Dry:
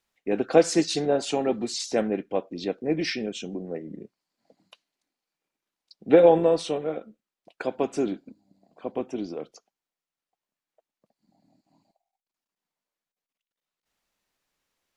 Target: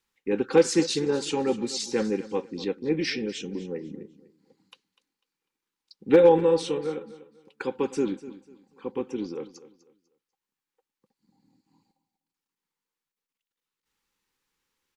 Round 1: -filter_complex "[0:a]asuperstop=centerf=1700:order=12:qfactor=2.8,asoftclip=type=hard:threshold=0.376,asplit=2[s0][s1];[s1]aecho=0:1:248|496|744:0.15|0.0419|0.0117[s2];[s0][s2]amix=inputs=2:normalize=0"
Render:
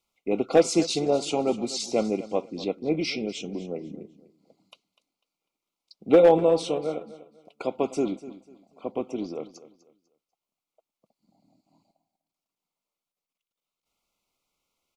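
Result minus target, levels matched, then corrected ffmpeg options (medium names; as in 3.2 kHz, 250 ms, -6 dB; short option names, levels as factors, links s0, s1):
2 kHz band -3.0 dB
-filter_complex "[0:a]asuperstop=centerf=650:order=12:qfactor=2.8,asoftclip=type=hard:threshold=0.376,asplit=2[s0][s1];[s1]aecho=0:1:248|496|744:0.15|0.0419|0.0117[s2];[s0][s2]amix=inputs=2:normalize=0"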